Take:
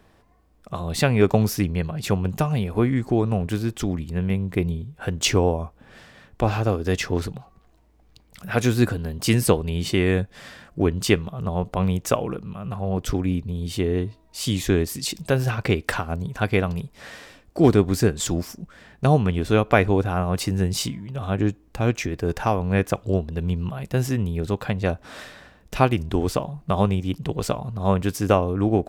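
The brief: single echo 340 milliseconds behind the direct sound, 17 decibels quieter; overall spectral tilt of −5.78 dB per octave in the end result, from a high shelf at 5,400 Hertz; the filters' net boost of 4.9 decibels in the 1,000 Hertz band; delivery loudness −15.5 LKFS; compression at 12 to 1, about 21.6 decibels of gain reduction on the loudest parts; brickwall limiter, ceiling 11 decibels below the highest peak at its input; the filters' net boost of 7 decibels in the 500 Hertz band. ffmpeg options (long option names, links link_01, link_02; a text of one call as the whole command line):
ffmpeg -i in.wav -af "equalizer=frequency=500:width_type=o:gain=8,equalizer=frequency=1000:width_type=o:gain=3.5,highshelf=frequency=5400:gain=-9,acompressor=threshold=-29dB:ratio=12,alimiter=level_in=1.5dB:limit=-24dB:level=0:latency=1,volume=-1.5dB,aecho=1:1:340:0.141,volume=21.5dB" out.wav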